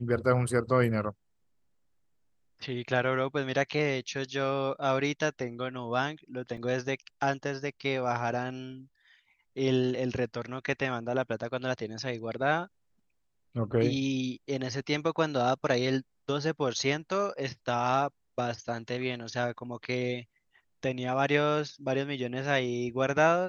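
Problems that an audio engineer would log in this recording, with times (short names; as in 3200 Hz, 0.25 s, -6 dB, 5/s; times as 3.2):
6.57 gap 3.6 ms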